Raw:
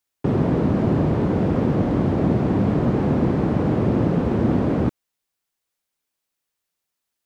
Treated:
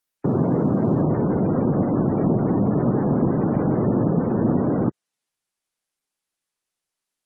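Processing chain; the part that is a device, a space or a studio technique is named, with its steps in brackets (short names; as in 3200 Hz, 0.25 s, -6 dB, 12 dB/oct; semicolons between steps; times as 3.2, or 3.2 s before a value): noise-suppressed video call (HPF 110 Hz 24 dB/oct; spectral gate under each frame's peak -30 dB strong; Opus 20 kbps 48000 Hz)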